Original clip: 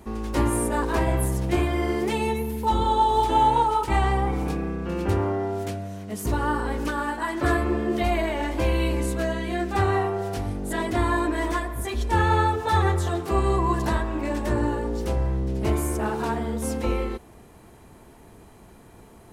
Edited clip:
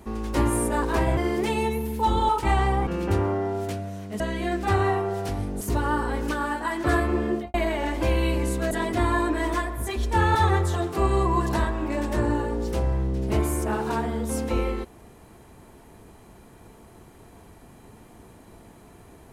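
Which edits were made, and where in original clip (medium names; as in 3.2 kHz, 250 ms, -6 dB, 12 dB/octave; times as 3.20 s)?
1.17–1.81 s: delete
2.93–3.74 s: delete
4.32–4.85 s: delete
7.86–8.11 s: studio fade out
9.28–10.69 s: move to 6.18 s
12.33–12.68 s: delete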